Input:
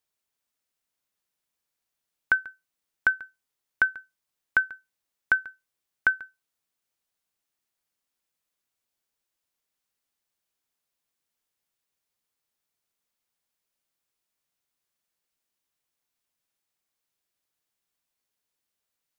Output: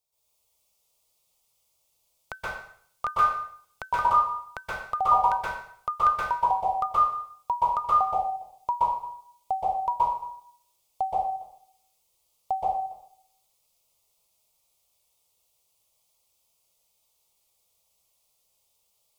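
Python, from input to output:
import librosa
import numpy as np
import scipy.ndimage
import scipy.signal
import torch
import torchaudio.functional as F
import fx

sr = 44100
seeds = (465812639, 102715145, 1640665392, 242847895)

y = fx.notch(x, sr, hz=3000.0, q=12.0)
y = fx.echo_pitch(y, sr, ms=124, semitones=-4, count=3, db_per_echo=-3.0)
y = fx.fixed_phaser(y, sr, hz=670.0, stages=4)
y = fx.rev_plate(y, sr, seeds[0], rt60_s=0.58, hf_ratio=1.0, predelay_ms=115, drr_db=-9.0)
y = F.gain(torch.from_numpy(y), 1.5).numpy()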